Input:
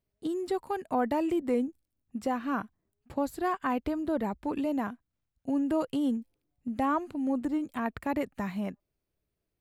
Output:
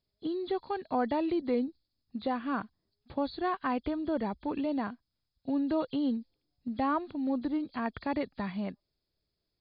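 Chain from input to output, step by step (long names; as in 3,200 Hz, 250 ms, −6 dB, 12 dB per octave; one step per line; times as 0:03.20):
hearing-aid frequency compression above 3,200 Hz 4 to 1
level −1.5 dB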